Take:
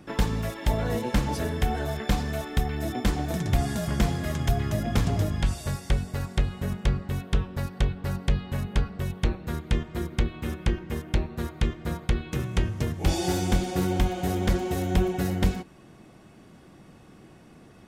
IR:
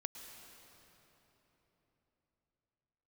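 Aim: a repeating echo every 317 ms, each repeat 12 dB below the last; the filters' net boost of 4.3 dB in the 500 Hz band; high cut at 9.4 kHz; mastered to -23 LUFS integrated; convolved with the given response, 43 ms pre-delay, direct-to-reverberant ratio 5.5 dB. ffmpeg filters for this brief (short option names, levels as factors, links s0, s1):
-filter_complex "[0:a]lowpass=9400,equalizer=f=500:t=o:g=6,aecho=1:1:317|634|951:0.251|0.0628|0.0157,asplit=2[s0][s1];[1:a]atrim=start_sample=2205,adelay=43[s2];[s1][s2]afir=irnorm=-1:irlink=0,volume=0.668[s3];[s0][s3]amix=inputs=2:normalize=0,volume=1.33"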